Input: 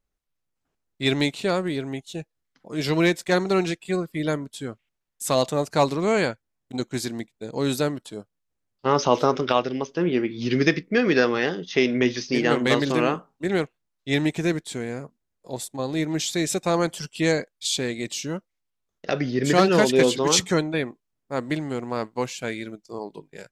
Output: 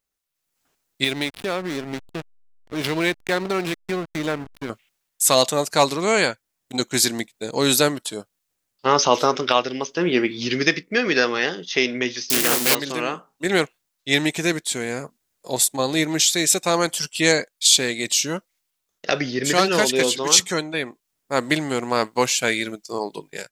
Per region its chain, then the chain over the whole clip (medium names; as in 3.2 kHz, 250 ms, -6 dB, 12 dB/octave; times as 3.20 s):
1.04–4.70 s: low-pass 4.1 kHz 24 dB/octave + hysteresis with a dead band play -26.5 dBFS + compression 2.5:1, threshold -31 dBFS
12.30–12.75 s: zero-crossing glitches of -12 dBFS + waveshaping leveller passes 1 + loudspeaker Doppler distortion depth 0.35 ms
whole clip: tilt EQ +2.5 dB/octave; level rider; trim -1 dB